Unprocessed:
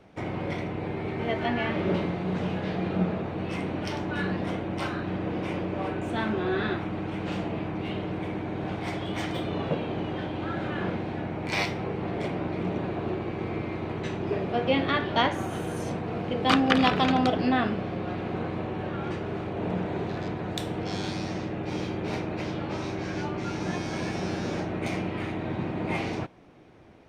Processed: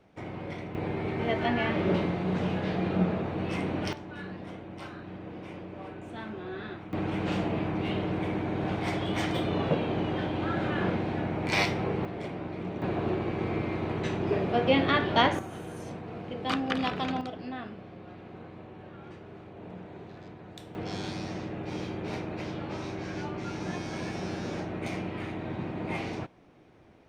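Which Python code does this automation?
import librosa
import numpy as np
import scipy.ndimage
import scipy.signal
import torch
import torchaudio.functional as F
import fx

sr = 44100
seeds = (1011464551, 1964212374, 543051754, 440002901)

y = fx.gain(x, sr, db=fx.steps((0.0, -6.5), (0.75, 0.0), (3.93, -11.0), (6.93, 1.5), (12.05, -6.0), (12.82, 1.0), (15.39, -8.0), (17.21, -14.0), (20.75, -4.0)))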